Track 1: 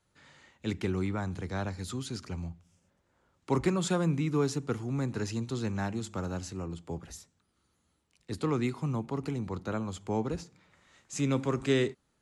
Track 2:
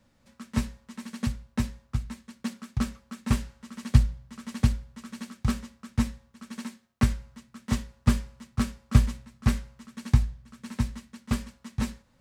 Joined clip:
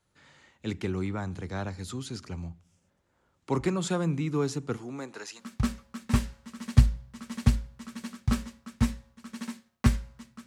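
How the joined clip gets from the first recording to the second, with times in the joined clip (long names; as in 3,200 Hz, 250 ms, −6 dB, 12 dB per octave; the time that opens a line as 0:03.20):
track 1
0:04.76–0:05.43: high-pass filter 170 Hz → 1,200 Hz
0:05.40: continue with track 2 from 0:02.57, crossfade 0.06 s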